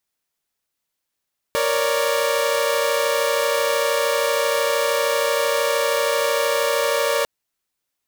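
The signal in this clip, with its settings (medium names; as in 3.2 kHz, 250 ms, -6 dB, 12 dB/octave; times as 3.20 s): chord A#4/C#5/D5 saw, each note -20 dBFS 5.70 s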